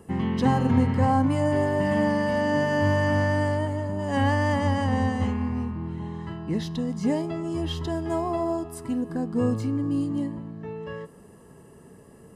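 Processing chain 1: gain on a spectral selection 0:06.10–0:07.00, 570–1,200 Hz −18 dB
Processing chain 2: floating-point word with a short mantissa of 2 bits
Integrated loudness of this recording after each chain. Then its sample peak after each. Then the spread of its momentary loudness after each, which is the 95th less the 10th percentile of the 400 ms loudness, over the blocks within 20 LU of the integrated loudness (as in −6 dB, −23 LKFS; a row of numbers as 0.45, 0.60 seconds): −25.5, −25.5 LKFS; −9.0, −8.5 dBFS; 12, 12 LU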